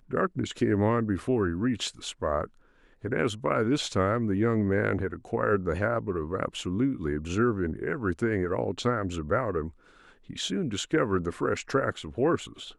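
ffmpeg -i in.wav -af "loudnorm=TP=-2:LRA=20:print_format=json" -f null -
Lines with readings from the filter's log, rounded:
"input_i" : "-28.4",
"input_tp" : "-11.7",
"input_lra" : "2.1",
"input_thresh" : "-38.9",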